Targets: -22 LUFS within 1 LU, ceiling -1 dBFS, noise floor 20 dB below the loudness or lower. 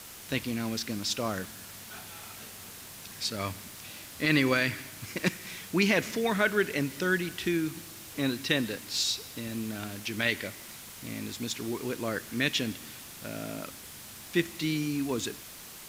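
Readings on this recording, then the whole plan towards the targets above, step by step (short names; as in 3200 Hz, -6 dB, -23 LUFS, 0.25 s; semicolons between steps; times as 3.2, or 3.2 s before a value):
noise floor -46 dBFS; noise floor target -51 dBFS; loudness -30.5 LUFS; peak -12.0 dBFS; loudness target -22.0 LUFS
-> denoiser 6 dB, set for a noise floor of -46 dBFS; gain +8.5 dB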